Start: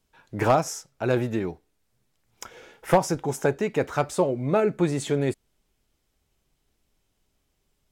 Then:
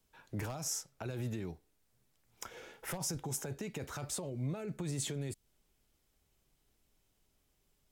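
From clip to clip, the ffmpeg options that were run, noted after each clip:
ffmpeg -i in.wav -filter_complex "[0:a]highshelf=frequency=10000:gain=6.5,alimiter=limit=-22dB:level=0:latency=1:release=22,acrossover=split=180|3000[link_01][link_02][link_03];[link_02]acompressor=threshold=-40dB:ratio=4[link_04];[link_01][link_04][link_03]amix=inputs=3:normalize=0,volume=-3.5dB" out.wav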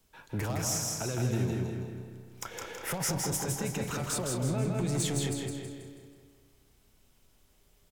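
ffmpeg -i in.wav -filter_complex "[0:a]asplit=2[link_01][link_02];[link_02]adelay=194,lowpass=frequency=3800:poles=1,volume=-6.5dB,asplit=2[link_03][link_04];[link_04]adelay=194,lowpass=frequency=3800:poles=1,volume=0.5,asplit=2[link_05][link_06];[link_06]adelay=194,lowpass=frequency=3800:poles=1,volume=0.5,asplit=2[link_07][link_08];[link_08]adelay=194,lowpass=frequency=3800:poles=1,volume=0.5,asplit=2[link_09][link_10];[link_10]adelay=194,lowpass=frequency=3800:poles=1,volume=0.5,asplit=2[link_11][link_12];[link_12]adelay=194,lowpass=frequency=3800:poles=1,volume=0.5[link_13];[link_03][link_05][link_07][link_09][link_11][link_13]amix=inputs=6:normalize=0[link_14];[link_01][link_14]amix=inputs=2:normalize=0,asoftclip=type=tanh:threshold=-31.5dB,asplit=2[link_15][link_16];[link_16]aecho=0:1:162|324|486|648|810|972:0.668|0.301|0.135|0.0609|0.0274|0.0123[link_17];[link_15][link_17]amix=inputs=2:normalize=0,volume=7dB" out.wav

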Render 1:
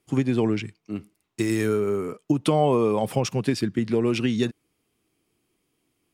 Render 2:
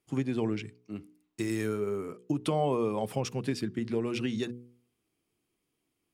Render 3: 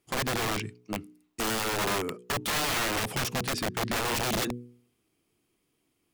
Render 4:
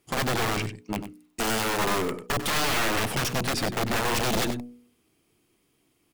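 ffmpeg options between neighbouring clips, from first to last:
ffmpeg -i in.wav -af "bandreject=frequency=60.65:width_type=h:width=4,bandreject=frequency=121.3:width_type=h:width=4,bandreject=frequency=181.95:width_type=h:width=4,bandreject=frequency=242.6:width_type=h:width=4,bandreject=frequency=303.25:width_type=h:width=4,bandreject=frequency=363.9:width_type=h:width=4,bandreject=frequency=424.55:width_type=h:width=4,bandreject=frequency=485.2:width_type=h:width=4,volume=-7.5dB" out.wav
ffmpeg -i in.wav -af "aeval=exprs='(mod(28.2*val(0)+1,2)-1)/28.2':channel_layout=same,volume=5.5dB" out.wav
ffmpeg -i in.wav -af "aeval=exprs='(tanh(35.5*val(0)+0.5)-tanh(0.5))/35.5':channel_layout=same,aecho=1:1:95:0.266,volume=8dB" out.wav

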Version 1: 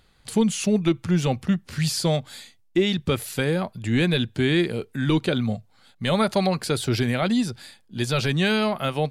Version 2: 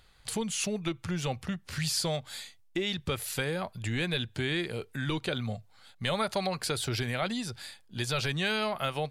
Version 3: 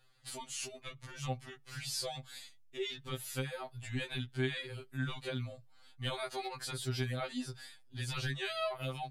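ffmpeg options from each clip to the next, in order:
ffmpeg -i in.wav -af "acompressor=threshold=-27dB:ratio=2,equalizer=frequency=240:width=0.76:gain=-8.5" out.wav
ffmpeg -i in.wav -af "asoftclip=type=hard:threshold=-17dB,afftfilt=real='re*2.45*eq(mod(b,6),0)':imag='im*2.45*eq(mod(b,6),0)':win_size=2048:overlap=0.75,volume=-5.5dB" out.wav

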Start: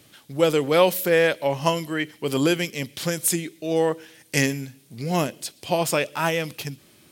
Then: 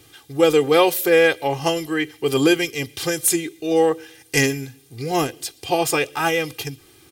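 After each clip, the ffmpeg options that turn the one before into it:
ffmpeg -i in.wav -af "lowshelf=frequency=69:gain=6.5,aecho=1:1:2.5:0.91,volume=1dB" out.wav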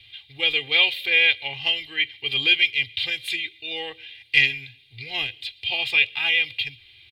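ffmpeg -i in.wav -af "firequalizer=gain_entry='entry(110,0);entry(160,-18);entry(300,-19);entry(840,-11);entry(1300,-16);entry(2200,12);entry(3800,12);entry(5800,-21)':delay=0.05:min_phase=1,volume=-4dB" out.wav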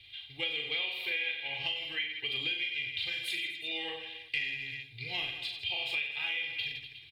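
ffmpeg -i in.wav -filter_complex "[0:a]asplit=2[link_01][link_02];[link_02]aecho=0:1:40|92|159.6|247.5|361.7:0.631|0.398|0.251|0.158|0.1[link_03];[link_01][link_03]amix=inputs=2:normalize=0,acompressor=threshold=-26dB:ratio=6,volume=-5.5dB" out.wav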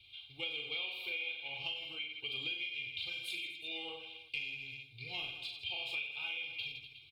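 ffmpeg -i in.wav -af "asuperstop=centerf=1800:order=20:qfactor=3.1,volume=-5.5dB" out.wav

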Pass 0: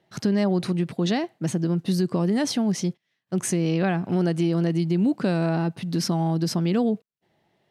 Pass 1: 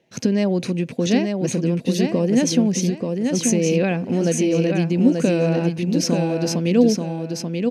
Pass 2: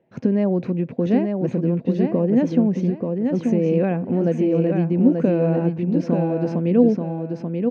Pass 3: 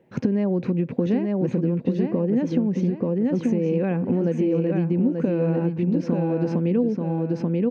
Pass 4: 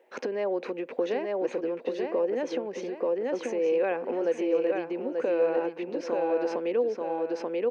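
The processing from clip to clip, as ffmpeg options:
ffmpeg -i in.wav -filter_complex "[0:a]equalizer=frequency=250:width_type=o:width=0.33:gain=9,equalizer=frequency=500:width_type=o:width=0.33:gain=11,equalizer=frequency=800:width_type=o:width=0.33:gain=-3,equalizer=frequency=1250:width_type=o:width=0.33:gain=-7,equalizer=frequency=2500:width_type=o:width=0.33:gain=10,equalizer=frequency=6300:width_type=o:width=0.33:gain=10,asplit=2[link_01][link_02];[link_02]aecho=0:1:884|1768|2652|3536:0.596|0.167|0.0467|0.0131[link_03];[link_01][link_03]amix=inputs=2:normalize=0" out.wav
ffmpeg -i in.wav -af "lowpass=1300" out.wav
ffmpeg -i in.wav -af "equalizer=frequency=670:width=6.3:gain=-8.5,acompressor=threshold=-26dB:ratio=5,volume=6.5dB" out.wav
ffmpeg -i in.wav -af "highpass=frequency=440:width=0.5412,highpass=frequency=440:width=1.3066,volume=2.5dB" out.wav

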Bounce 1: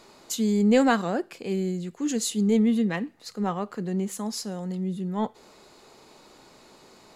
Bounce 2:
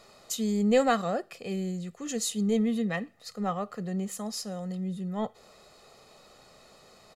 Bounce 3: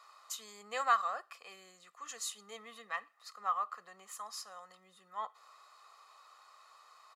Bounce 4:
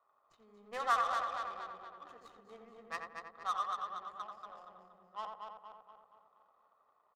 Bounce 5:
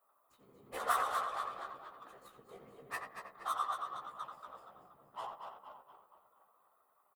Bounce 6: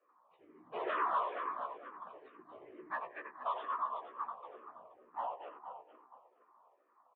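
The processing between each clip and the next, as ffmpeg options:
ffmpeg -i in.wav -af "aecho=1:1:1.6:0.6,volume=-3.5dB" out.wav
ffmpeg -i in.wav -af "highpass=frequency=1100:width_type=q:width=5.4,volume=-8.5dB" out.wav
ffmpeg -i in.wav -filter_complex "[0:a]asplit=2[link_01][link_02];[link_02]aecho=0:1:235|470|705|940|1175|1410|1645|1880:0.596|0.351|0.207|0.122|0.0722|0.0426|0.0251|0.0148[link_03];[link_01][link_03]amix=inputs=2:normalize=0,adynamicsmooth=sensitivity=6:basefreq=500,asplit=2[link_04][link_05];[link_05]adelay=87,lowpass=frequency=1700:poles=1,volume=-3.5dB,asplit=2[link_06][link_07];[link_07]adelay=87,lowpass=frequency=1700:poles=1,volume=0.28,asplit=2[link_08][link_09];[link_09]adelay=87,lowpass=frequency=1700:poles=1,volume=0.28,asplit=2[link_10][link_11];[link_11]adelay=87,lowpass=frequency=1700:poles=1,volume=0.28[link_12];[link_06][link_08][link_10][link_12]amix=inputs=4:normalize=0[link_13];[link_04][link_13]amix=inputs=2:normalize=0,volume=-2.5dB" out.wav
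ffmpeg -i in.wav -filter_complex "[0:a]afftfilt=real='hypot(re,im)*cos(2*PI*random(0))':imag='hypot(re,im)*sin(2*PI*random(1))':win_size=512:overlap=0.75,aexciter=amount=6:drive=5.2:freq=8300,asplit=2[link_01][link_02];[link_02]adelay=15,volume=-5dB[link_03];[link_01][link_03]amix=inputs=2:normalize=0,volume=4dB" out.wav
ffmpeg -i in.wav -filter_complex "[0:a]asoftclip=type=tanh:threshold=-31dB,highpass=frequency=350:width_type=q:width=0.5412,highpass=frequency=350:width_type=q:width=1.307,lowpass=frequency=2800:width_type=q:width=0.5176,lowpass=frequency=2800:width_type=q:width=0.7071,lowpass=frequency=2800:width_type=q:width=1.932,afreqshift=-93,asplit=2[link_01][link_02];[link_02]afreqshift=-2.2[link_03];[link_01][link_03]amix=inputs=2:normalize=1,volume=6.5dB" out.wav

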